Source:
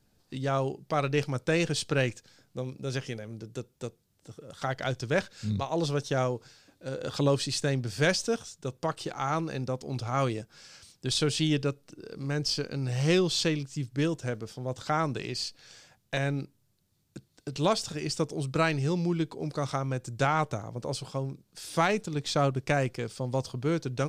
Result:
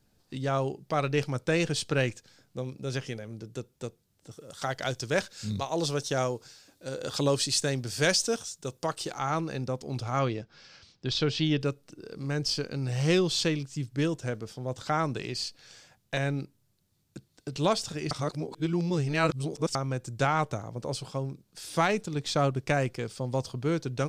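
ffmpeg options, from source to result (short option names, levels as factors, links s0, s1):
-filter_complex "[0:a]asettb=1/sr,asplit=3[s0][s1][s2];[s0]atrim=end=4.314[s3];[s1]atrim=start=4.31:end=9.19,asetpts=PTS-STARTPTS,afade=t=in:d=0.004:c=qsin,afade=t=out:st=4.876:d=0.004:c=qsin,bass=f=250:g=-3,treble=f=4000:g=7[s4];[s2]atrim=start=9.186[s5];[s3][s4]acrossfade=d=0.004:c1=hsin:c2=qsin[s6];[s6][s5]acrossfade=d=0.004:c1=qsin:c2=hsin,asettb=1/sr,asplit=3[s7][s8][s9];[s7]atrim=end=10.194[s10];[s8]atrim=start=10.19:end=11.61,asetpts=PTS-STARTPTS,afade=t=in:d=0.004:c=qsin,afade=t=out:st=1.416:d=0.004:c=qsin,lowpass=f=5200:w=0.5412,lowpass=f=5200:w=1.3066[s11];[s9]atrim=start=11.606[s12];[s10][s11]acrossfade=d=0.004:c1=hsin:c2=qsin[s13];[s13][s12]acrossfade=d=0.004:c1=qsin:c2=hsin,asplit=3[s14][s15][s16];[s14]atrim=end=18.112[s17];[s15]atrim=start=18.108:end=19.752,asetpts=PTS-STARTPTS,areverse[s18];[s16]atrim=start=19.748[s19];[s17][s18]acrossfade=d=0.004:c1=hsin:c2=hsin[s20];[s20][s19]acrossfade=d=0.004:c1=hsin:c2=hsin"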